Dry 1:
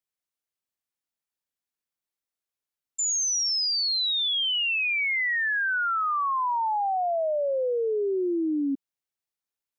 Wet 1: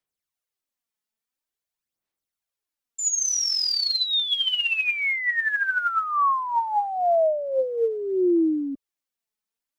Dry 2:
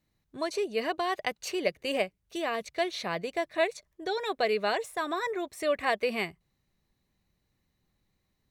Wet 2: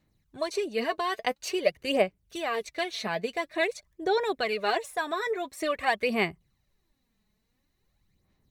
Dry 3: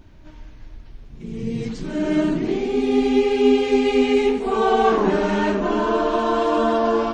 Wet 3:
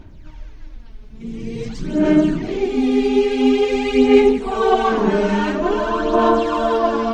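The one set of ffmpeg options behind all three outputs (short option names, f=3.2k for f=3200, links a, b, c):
-af "aphaser=in_gain=1:out_gain=1:delay=4.7:decay=0.55:speed=0.48:type=sinusoidal"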